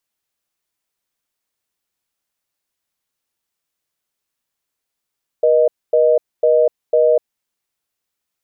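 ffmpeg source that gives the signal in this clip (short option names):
-f lavfi -i "aevalsrc='0.237*(sin(2*PI*480*t)+sin(2*PI*620*t))*clip(min(mod(t,0.5),0.25-mod(t,0.5))/0.005,0,1)':d=1.92:s=44100"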